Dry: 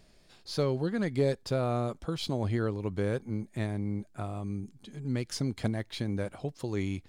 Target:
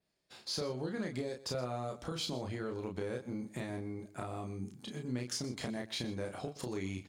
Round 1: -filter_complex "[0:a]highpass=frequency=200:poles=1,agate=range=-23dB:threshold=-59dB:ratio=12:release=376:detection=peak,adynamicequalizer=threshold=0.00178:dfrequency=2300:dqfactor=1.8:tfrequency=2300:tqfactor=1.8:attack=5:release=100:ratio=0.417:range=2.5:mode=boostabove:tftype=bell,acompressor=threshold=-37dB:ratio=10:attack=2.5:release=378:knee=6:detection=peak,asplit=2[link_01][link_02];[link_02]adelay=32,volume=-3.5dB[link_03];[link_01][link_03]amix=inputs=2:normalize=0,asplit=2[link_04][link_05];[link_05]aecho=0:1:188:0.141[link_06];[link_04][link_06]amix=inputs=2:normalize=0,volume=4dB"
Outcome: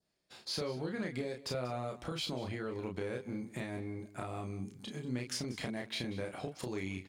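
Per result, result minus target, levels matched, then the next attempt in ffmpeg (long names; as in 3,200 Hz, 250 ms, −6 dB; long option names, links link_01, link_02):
echo 66 ms late; 2,000 Hz band +2.5 dB
-filter_complex "[0:a]highpass=frequency=200:poles=1,agate=range=-23dB:threshold=-59dB:ratio=12:release=376:detection=peak,adynamicequalizer=threshold=0.00178:dfrequency=2300:dqfactor=1.8:tfrequency=2300:tqfactor=1.8:attack=5:release=100:ratio=0.417:range=2.5:mode=boostabove:tftype=bell,acompressor=threshold=-37dB:ratio=10:attack=2.5:release=378:knee=6:detection=peak,asplit=2[link_01][link_02];[link_02]adelay=32,volume=-3.5dB[link_03];[link_01][link_03]amix=inputs=2:normalize=0,asplit=2[link_04][link_05];[link_05]aecho=0:1:122:0.141[link_06];[link_04][link_06]amix=inputs=2:normalize=0,volume=4dB"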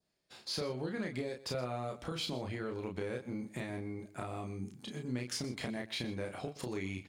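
2,000 Hz band +2.5 dB
-filter_complex "[0:a]highpass=frequency=200:poles=1,agate=range=-23dB:threshold=-59dB:ratio=12:release=376:detection=peak,adynamicequalizer=threshold=0.00178:dfrequency=6400:dqfactor=1.8:tfrequency=6400:tqfactor=1.8:attack=5:release=100:ratio=0.417:range=2.5:mode=boostabove:tftype=bell,acompressor=threshold=-37dB:ratio=10:attack=2.5:release=378:knee=6:detection=peak,asplit=2[link_01][link_02];[link_02]adelay=32,volume=-3.5dB[link_03];[link_01][link_03]amix=inputs=2:normalize=0,asplit=2[link_04][link_05];[link_05]aecho=0:1:122:0.141[link_06];[link_04][link_06]amix=inputs=2:normalize=0,volume=4dB"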